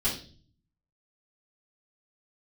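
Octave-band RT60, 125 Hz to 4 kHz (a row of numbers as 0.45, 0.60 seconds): 0.95, 0.75, 0.50, 0.35, 0.35, 0.45 seconds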